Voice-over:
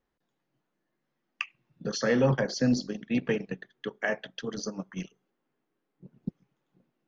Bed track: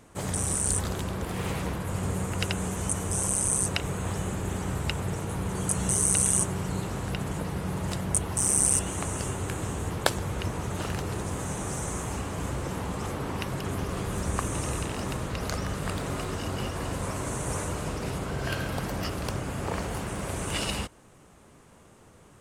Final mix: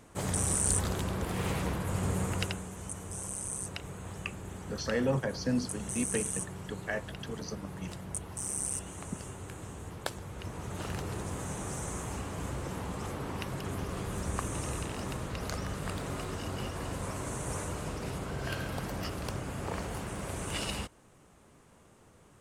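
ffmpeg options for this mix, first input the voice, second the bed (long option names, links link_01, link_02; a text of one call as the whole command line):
ffmpeg -i stem1.wav -i stem2.wav -filter_complex "[0:a]adelay=2850,volume=-5.5dB[link_01];[1:a]volume=5dB,afade=type=out:start_time=2.31:duration=0.33:silence=0.316228,afade=type=in:start_time=10.32:duration=0.63:silence=0.473151[link_02];[link_01][link_02]amix=inputs=2:normalize=0" out.wav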